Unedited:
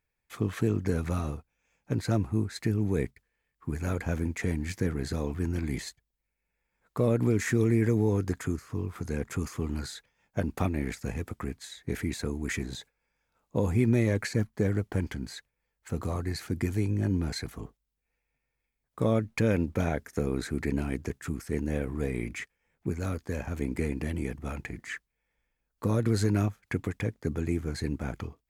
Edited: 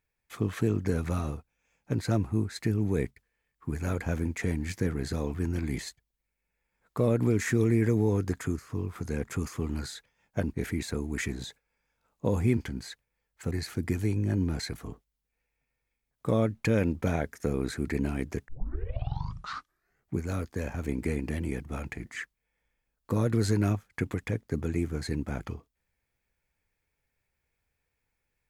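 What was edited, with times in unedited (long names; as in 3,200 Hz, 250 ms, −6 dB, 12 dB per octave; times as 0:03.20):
0:10.54–0:11.85: remove
0:13.88–0:15.03: remove
0:15.97–0:16.24: remove
0:21.21: tape start 1.74 s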